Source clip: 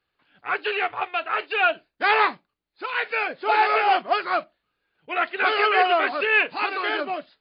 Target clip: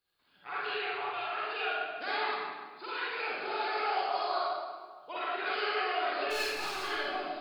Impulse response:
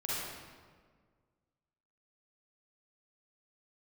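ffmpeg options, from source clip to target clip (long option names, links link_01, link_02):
-filter_complex "[0:a]asettb=1/sr,asplit=3[link_01][link_02][link_03];[link_01]atrim=end=3.924[link_04];[link_02]atrim=start=3.92:end=5.17,asetpts=PTS-STARTPTS,afade=type=in:duration=0.004:curve=qsin,afade=type=out:start_time=1.246:duration=0.004:curve=qsin,equalizer=frequency=125:width_type=o:width=1:gain=-5,equalizer=frequency=250:width_type=o:width=1:gain=-6,equalizer=frequency=500:width_type=o:width=1:gain=5,equalizer=frequency=1000:width_type=o:width=1:gain=11,equalizer=frequency=2000:width_type=o:width=1:gain=-11,equalizer=frequency=4000:width_type=o:width=1:gain=9[link_05];[link_03]atrim=start=5.166[link_06];[link_04][link_05]acrossfade=duration=0.004:curve1=hsin:curve2=qsin[link_07];[link_07][link_06]acrossfade=duration=0.004:curve1=qsin:curve2=hsin,acompressor=threshold=-30dB:ratio=2.5,asettb=1/sr,asplit=3[link_08][link_09][link_10];[link_08]atrim=end=6.304[link_11];[link_09]atrim=start=6.3:end=6.83,asetpts=PTS-STARTPTS,afade=type=in:duration=0.004:curve=qsin,afade=type=out:start_time=0.526:duration=0.004:curve=qsin,aeval=exprs='clip(val(0),-1,0.0188)':channel_layout=same[link_12];[link_10]atrim=start=6.826[link_13];[link_11][link_12]acrossfade=duration=0.004:curve1=hsin:curve2=qsin[link_14];[link_14][link_13]acrossfade=duration=0.004:curve1=qsin:curve2=hsin,aexciter=amount=3.7:drive=4.5:freq=3600[link_15];[1:a]atrim=start_sample=2205[link_16];[link_15][link_16]afir=irnorm=-1:irlink=0,volume=-8.5dB"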